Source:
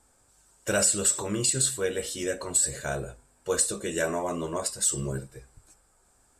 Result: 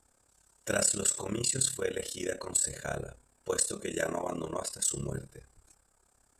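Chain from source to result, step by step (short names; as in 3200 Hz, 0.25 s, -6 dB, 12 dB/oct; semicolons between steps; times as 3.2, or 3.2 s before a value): AM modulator 34 Hz, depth 70%; gain -1 dB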